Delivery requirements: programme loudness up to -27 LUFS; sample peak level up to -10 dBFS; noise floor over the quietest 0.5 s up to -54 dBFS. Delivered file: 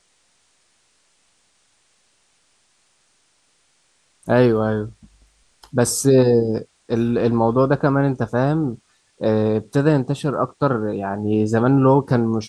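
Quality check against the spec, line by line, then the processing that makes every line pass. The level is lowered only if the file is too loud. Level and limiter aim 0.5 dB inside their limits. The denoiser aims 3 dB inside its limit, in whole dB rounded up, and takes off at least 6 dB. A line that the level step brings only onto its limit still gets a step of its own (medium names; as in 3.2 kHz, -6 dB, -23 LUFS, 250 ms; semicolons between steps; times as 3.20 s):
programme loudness -19.0 LUFS: fail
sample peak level -3.5 dBFS: fail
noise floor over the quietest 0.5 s -62 dBFS: pass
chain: trim -8.5 dB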